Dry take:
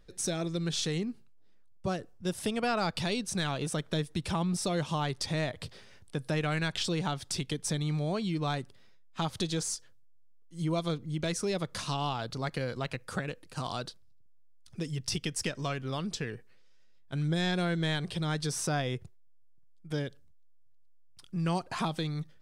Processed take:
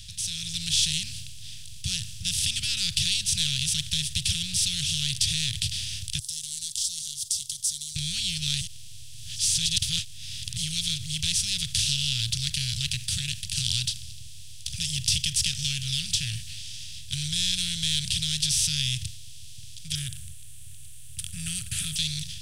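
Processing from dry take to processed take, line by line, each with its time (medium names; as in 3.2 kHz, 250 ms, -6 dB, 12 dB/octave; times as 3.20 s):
6.19–7.96 s: inverse Chebyshev high-pass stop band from 2.7 kHz, stop band 50 dB
8.61–10.57 s: reverse
19.95–21.96 s: FFT filter 540 Hz 0 dB, 790 Hz -12 dB, 1.3 kHz +12 dB, 5.1 kHz -30 dB, 8.8 kHz +8 dB
whole clip: spectral levelling over time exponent 0.4; elliptic band-stop 110–3000 Hz, stop band 50 dB; level rider gain up to 7 dB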